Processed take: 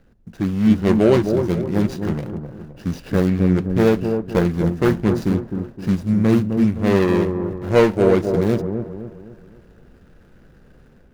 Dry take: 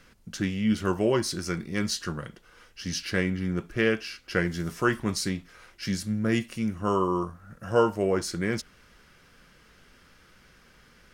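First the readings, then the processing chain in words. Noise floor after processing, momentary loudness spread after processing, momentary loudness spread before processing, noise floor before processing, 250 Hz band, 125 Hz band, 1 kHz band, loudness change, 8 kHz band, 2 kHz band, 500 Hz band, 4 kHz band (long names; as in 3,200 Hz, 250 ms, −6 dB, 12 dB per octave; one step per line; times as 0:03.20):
−50 dBFS, 13 LU, 12 LU, −58 dBFS, +11.0 dB, +11.5 dB, +3.5 dB, +9.0 dB, can't be measured, +0.5 dB, +10.0 dB, −2.0 dB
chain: running median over 41 samples
notch filter 8,000 Hz, Q 27
automatic gain control gain up to 6.5 dB
on a send: delay with a low-pass on its return 259 ms, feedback 41%, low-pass 990 Hz, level −6 dB
on the sum: level +4 dB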